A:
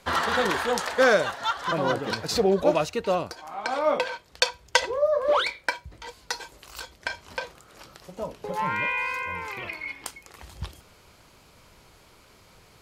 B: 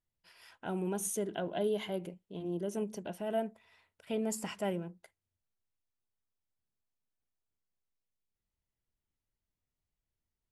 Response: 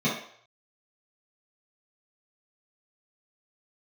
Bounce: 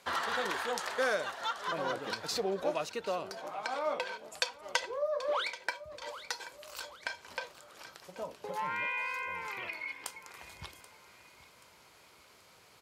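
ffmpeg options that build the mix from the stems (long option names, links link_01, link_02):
-filter_complex "[0:a]volume=-3.5dB,asplit=2[link_01][link_02];[link_02]volume=-18.5dB[link_03];[1:a]highpass=400,volume=-12.5dB[link_04];[link_03]aecho=0:1:781|1562|2343|3124|3905|4686:1|0.42|0.176|0.0741|0.0311|0.0131[link_05];[link_01][link_04][link_05]amix=inputs=3:normalize=0,highpass=70,lowshelf=frequency=280:gain=-11,acompressor=threshold=-38dB:ratio=1.5"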